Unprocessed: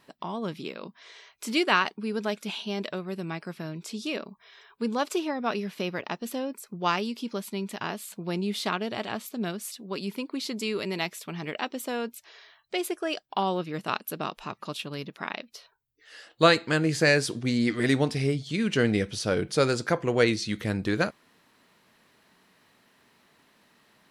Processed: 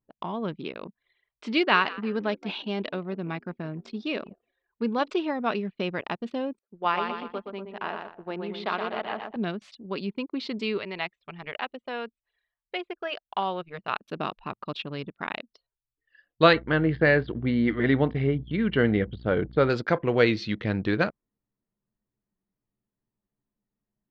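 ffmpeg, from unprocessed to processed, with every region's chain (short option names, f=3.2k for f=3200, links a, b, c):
-filter_complex "[0:a]asettb=1/sr,asplit=3[a][b][c];[a]atrim=end=1.544[d];[b]atrim=start=1.54:end=5.1,asetpts=PTS-STARTPTS,afade=t=in:d=0.004:c=qsin,afade=t=out:st=3.556:d=0.004:c=qsin,bandreject=f=3.1k:w=28,asplit=4[e][f][g][h];[f]adelay=169,afreqshift=75,volume=-17.5dB[i];[g]adelay=338,afreqshift=150,volume=-26.6dB[j];[h]adelay=507,afreqshift=225,volume=-35.7dB[k];[e][i][j][k]amix=inputs=4:normalize=0,atrim=end_sample=156996[l];[c]atrim=start=5.096[m];[d][l]acrossfade=d=0.004:c1=hsin:c2=qsin[n];[n][m]acrossfade=d=0.004:c1=qsin:c2=hsin,asettb=1/sr,asplit=3[o][p][q];[o]atrim=end=6.594[r];[p]atrim=start=6.59:end=9.36,asetpts=PTS-STARTPTS,afade=t=in:d=0.004:c=qsin,afade=t=out:st=2.766:d=0.004:c=qsin,highpass=580,aemphasis=mode=reproduction:type=riaa,aecho=1:1:120|240|360|480|600|720:0.562|0.287|0.146|0.0746|0.038|0.0194,atrim=end_sample=122157[s];[q]atrim=start=9.356[t];[r][s]acrossfade=d=0.004:c1=hsin:c2=qsin[u];[u][t]acrossfade=d=0.004:c1=qsin:c2=hsin,asettb=1/sr,asplit=3[v][w][x];[v]atrim=end=10.784[y];[w]atrim=start=10.78:end=14.01,asetpts=PTS-STARTPTS,afade=t=in:d=0.004:c=qsin,afade=t=out:st=3.226:d=0.004:c=qsin,bandreject=f=310:w=6.3,acrossover=split=3300[z][aa];[aa]acompressor=threshold=-44dB:ratio=4:attack=1:release=60[ab];[z][ab]amix=inputs=2:normalize=0,equalizer=f=210:w=0.52:g=-8.5[ac];[x]atrim=start=14.006[ad];[y][ac]acrossfade=d=0.004:c1=hsin:c2=qsin[ae];[ae][ad]acrossfade=d=0.004:c1=qsin:c2=hsin,asettb=1/sr,asplit=3[af][ag][ah];[af]atrim=end=16.534[ai];[ag]atrim=start=16.53:end=19.7,asetpts=PTS-STARTPTS,afade=t=in:d=0.004:c=qsin,afade=t=out:st=3.166:d=0.004:c=qsin,bandreject=f=2.5k:w=5.6,aeval=exprs='val(0)+0.00631*(sin(2*PI*60*n/s)+sin(2*PI*2*60*n/s)/2+sin(2*PI*3*60*n/s)/3+sin(2*PI*4*60*n/s)/4+sin(2*PI*5*60*n/s)/5)':c=same,lowpass=f=3.2k:w=0.5412,lowpass=f=3.2k:w=1.3066[aj];[ah]atrim=start=19.696[ak];[ai][aj]acrossfade=d=0.004:c1=hsin:c2=qsin[al];[al][ak]acrossfade=d=0.004:c1=qsin:c2=hsin,anlmdn=0.631,lowpass=f=4k:w=0.5412,lowpass=f=4k:w=1.3066,volume=1.5dB"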